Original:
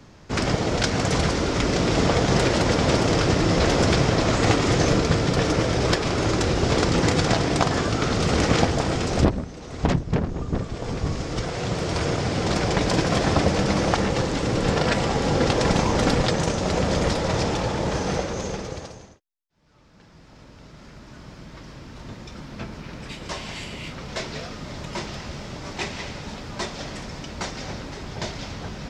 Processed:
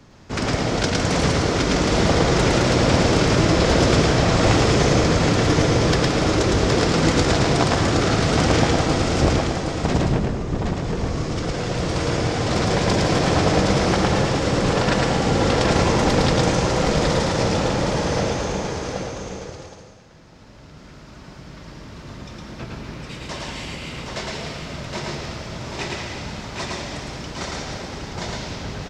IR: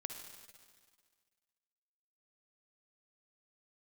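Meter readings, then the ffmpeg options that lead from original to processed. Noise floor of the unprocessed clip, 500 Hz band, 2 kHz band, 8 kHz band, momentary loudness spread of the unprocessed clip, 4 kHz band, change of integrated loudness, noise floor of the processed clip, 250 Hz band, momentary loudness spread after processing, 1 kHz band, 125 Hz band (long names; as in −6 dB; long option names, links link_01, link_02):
−48 dBFS, +3.0 dB, +3.0 dB, +3.0 dB, 15 LU, +3.0 dB, +3.0 dB, −43 dBFS, +3.0 dB, 14 LU, +3.0 dB, +3.0 dB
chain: -filter_complex "[0:a]aecho=1:1:768:0.562,asplit=2[link_01][link_02];[1:a]atrim=start_sample=2205,adelay=110[link_03];[link_02][link_03]afir=irnorm=-1:irlink=0,volume=2dB[link_04];[link_01][link_04]amix=inputs=2:normalize=0,volume=-1dB"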